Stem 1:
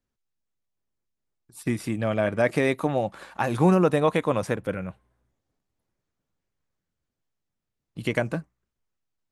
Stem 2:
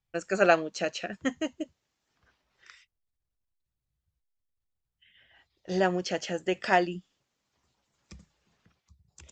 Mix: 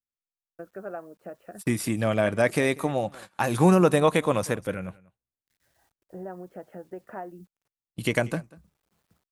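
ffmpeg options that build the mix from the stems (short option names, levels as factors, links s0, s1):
-filter_complex "[0:a]agate=range=0.0708:threshold=0.00891:ratio=16:detection=peak,tremolo=f=0.51:d=0.28,volume=1.12,asplit=3[s0][s1][s2];[s1]volume=0.075[s3];[1:a]lowpass=f=1300:w=0.5412,lowpass=f=1300:w=1.3066,acompressor=threshold=0.0126:ratio=2.5,acrusher=bits=11:mix=0:aa=0.000001,adelay=450,volume=0.794[s4];[s2]apad=whole_len=430637[s5];[s4][s5]sidechaincompress=threshold=0.01:ratio=8:attack=39:release=410[s6];[s3]aecho=0:1:191:1[s7];[s0][s6][s7]amix=inputs=3:normalize=0,highshelf=f=5600:g=11"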